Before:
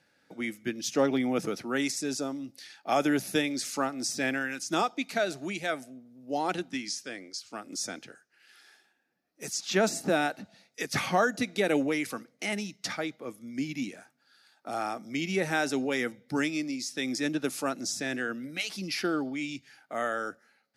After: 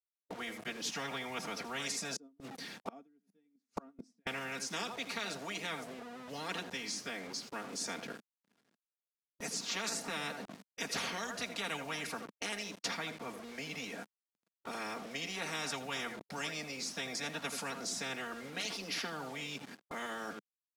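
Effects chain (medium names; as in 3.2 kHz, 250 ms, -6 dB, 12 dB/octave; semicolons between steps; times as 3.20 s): comb 4.3 ms, depth 97%; delay 82 ms -18 dB; bit crusher 8-bit; 2.16–4.27 s: inverted gate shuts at -24 dBFS, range -38 dB; band-pass filter 210 Hz, Q 2.3; tilt EQ +3 dB/octave; gate with hold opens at -60 dBFS; spectrum-flattening compressor 10:1; trim +2.5 dB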